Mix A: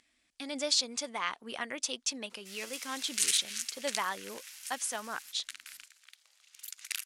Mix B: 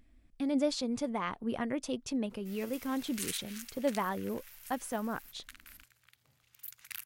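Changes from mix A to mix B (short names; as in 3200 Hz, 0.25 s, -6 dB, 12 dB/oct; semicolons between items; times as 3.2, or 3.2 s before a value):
background: remove brick-wall FIR high-pass 470 Hz; master: remove weighting filter ITU-R 468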